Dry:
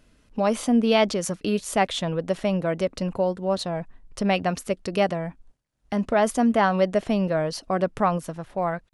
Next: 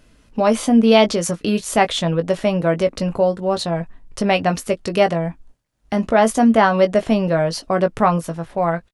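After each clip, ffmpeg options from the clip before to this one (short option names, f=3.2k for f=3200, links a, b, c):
-filter_complex "[0:a]asplit=2[a][b];[b]adelay=18,volume=-8dB[c];[a][c]amix=inputs=2:normalize=0,volume=5.5dB"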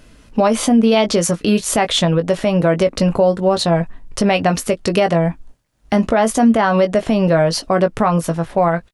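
-af "alimiter=limit=-12.5dB:level=0:latency=1:release=152,volume=7dB"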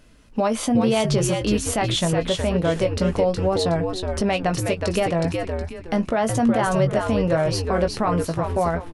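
-filter_complex "[0:a]asplit=5[a][b][c][d][e];[b]adelay=367,afreqshift=-90,volume=-4.5dB[f];[c]adelay=734,afreqshift=-180,volume=-14.4dB[g];[d]adelay=1101,afreqshift=-270,volume=-24.3dB[h];[e]adelay=1468,afreqshift=-360,volume=-34.2dB[i];[a][f][g][h][i]amix=inputs=5:normalize=0,volume=-7dB"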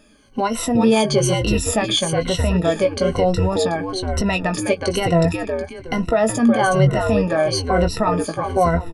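-af "afftfilt=real='re*pow(10,18/40*sin(2*PI*(2*log(max(b,1)*sr/1024/100)/log(2)-(-1.1)*(pts-256)/sr)))':imag='im*pow(10,18/40*sin(2*PI*(2*log(max(b,1)*sr/1024/100)/log(2)-(-1.1)*(pts-256)/sr)))':win_size=1024:overlap=0.75"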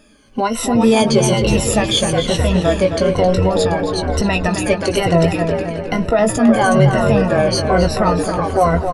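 -filter_complex "[0:a]asplit=2[a][b];[b]adelay=266,lowpass=f=4k:p=1,volume=-7.5dB,asplit=2[c][d];[d]adelay=266,lowpass=f=4k:p=1,volume=0.55,asplit=2[e][f];[f]adelay=266,lowpass=f=4k:p=1,volume=0.55,asplit=2[g][h];[h]adelay=266,lowpass=f=4k:p=1,volume=0.55,asplit=2[i][j];[j]adelay=266,lowpass=f=4k:p=1,volume=0.55,asplit=2[k][l];[l]adelay=266,lowpass=f=4k:p=1,volume=0.55,asplit=2[m][n];[n]adelay=266,lowpass=f=4k:p=1,volume=0.55[o];[a][c][e][g][i][k][m][o]amix=inputs=8:normalize=0,volume=2.5dB"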